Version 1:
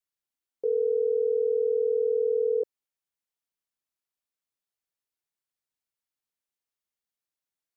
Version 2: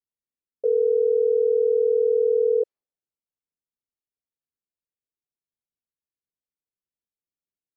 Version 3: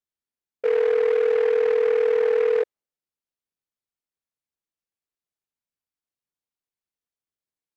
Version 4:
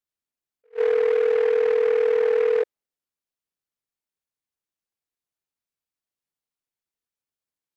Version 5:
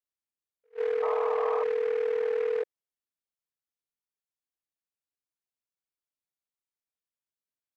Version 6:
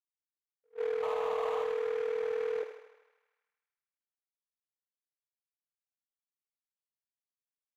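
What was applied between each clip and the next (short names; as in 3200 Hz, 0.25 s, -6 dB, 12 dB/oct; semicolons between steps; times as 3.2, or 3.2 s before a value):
low-pass opened by the level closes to 310 Hz, open at -22.5 dBFS; bell 510 Hz +5.5 dB 1.1 oct
noise-modulated delay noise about 1300 Hz, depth 0.047 ms
attack slew limiter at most 410 dB/s
painted sound noise, 1.02–1.64, 580–1300 Hz -26 dBFS; gain -8 dB
median filter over 25 samples; thinning echo 78 ms, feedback 74%, high-pass 430 Hz, level -8 dB; mismatched tape noise reduction decoder only; gain -4 dB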